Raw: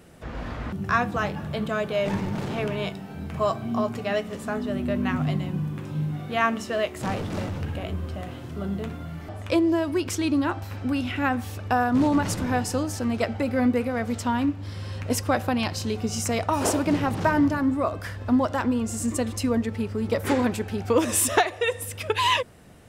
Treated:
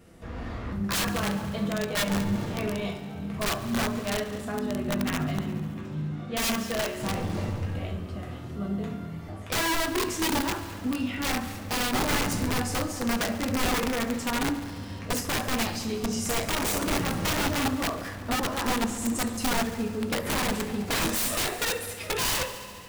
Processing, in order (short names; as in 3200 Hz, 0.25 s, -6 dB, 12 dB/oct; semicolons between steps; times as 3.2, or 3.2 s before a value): 13.49–13.91 bell 84 Hz +6.5 dB 1.1 oct; reverb, pre-delay 3 ms, DRR -1 dB; wrapped overs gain 15.5 dB; low shelf 200 Hz +7 dB; de-hum 56.04 Hz, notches 32; 5.77–6.36 LPF 7100 Hz 12 dB/oct; multi-head echo 70 ms, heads all three, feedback 61%, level -20 dB; gain -6.5 dB